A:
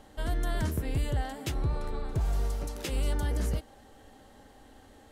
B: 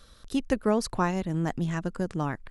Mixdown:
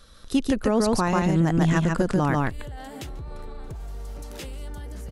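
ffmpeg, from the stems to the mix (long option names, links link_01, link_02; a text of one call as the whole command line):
ffmpeg -i stem1.wav -i stem2.wav -filter_complex "[0:a]alimiter=level_in=3dB:limit=-24dB:level=0:latency=1:release=24,volume=-3dB,acompressor=threshold=-42dB:ratio=6,adelay=1550,volume=-1dB,asplit=2[link_01][link_02];[link_02]volume=-21.5dB[link_03];[1:a]volume=2dB,asplit=3[link_04][link_05][link_06];[link_05]volume=-4dB[link_07];[link_06]apad=whole_len=293896[link_08];[link_01][link_08]sidechaincompress=threshold=-34dB:ratio=8:attack=16:release=264[link_09];[link_03][link_07]amix=inputs=2:normalize=0,aecho=0:1:142:1[link_10];[link_09][link_04][link_10]amix=inputs=3:normalize=0,dynaudnorm=framelen=220:gausssize=3:maxgain=9dB,alimiter=limit=-12dB:level=0:latency=1:release=44" out.wav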